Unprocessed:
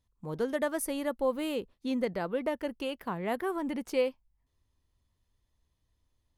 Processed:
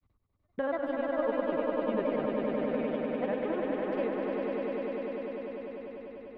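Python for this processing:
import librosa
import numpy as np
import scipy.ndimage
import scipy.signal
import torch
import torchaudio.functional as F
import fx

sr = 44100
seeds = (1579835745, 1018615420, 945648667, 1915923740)

p1 = fx.high_shelf(x, sr, hz=11000.0, db=-5.5)
p2 = fx.level_steps(p1, sr, step_db=16)
p3 = p1 + (p2 * 10.0 ** (-1.5 / 20.0))
p4 = fx.step_gate(p3, sr, bpm=74, pattern='x..xx.xxxx', floor_db=-60.0, edge_ms=4.5)
p5 = fx.granulator(p4, sr, seeds[0], grain_ms=100.0, per_s=20.0, spray_ms=100.0, spread_st=3)
p6 = fx.air_absorb(p5, sr, metres=470.0)
p7 = fx.echo_swell(p6, sr, ms=99, loudest=5, wet_db=-4.5)
p8 = fx.band_squash(p7, sr, depth_pct=40)
y = p8 * 10.0 ** (-5.0 / 20.0)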